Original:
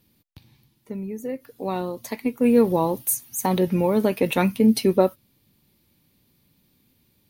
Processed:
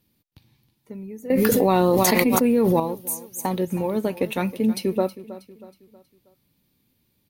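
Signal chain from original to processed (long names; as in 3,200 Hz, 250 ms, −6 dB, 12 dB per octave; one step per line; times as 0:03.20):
0:03.39–0:04.31: transient designer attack +3 dB, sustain −3 dB
repeating echo 319 ms, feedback 43%, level −16 dB
0:01.30–0:02.80: envelope flattener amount 100%
level −4.5 dB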